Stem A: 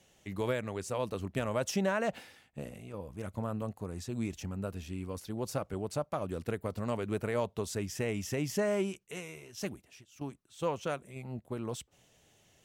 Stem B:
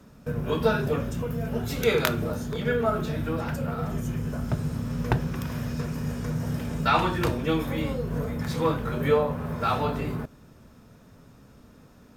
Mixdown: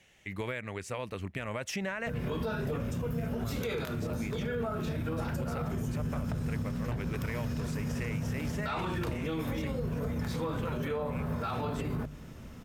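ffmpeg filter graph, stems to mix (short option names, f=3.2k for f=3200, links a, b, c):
-filter_complex "[0:a]equalizer=f=2.1k:w=1.3:g=13,volume=-2.5dB[a];[1:a]bandreject=f=50:t=h:w=6,bandreject=f=100:t=h:w=6,bandreject=f=150:t=h:w=6,dynaudnorm=f=200:g=3:m=7dB,adelay=1800,volume=-4.5dB[b];[a][b]amix=inputs=2:normalize=0,lowshelf=f=140:g=6,alimiter=level_in=1.5dB:limit=-24dB:level=0:latency=1:release=142,volume=-1.5dB"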